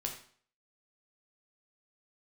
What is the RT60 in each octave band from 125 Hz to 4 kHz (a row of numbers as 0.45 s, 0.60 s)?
0.50 s, 0.50 s, 0.50 s, 0.50 s, 0.50 s, 0.45 s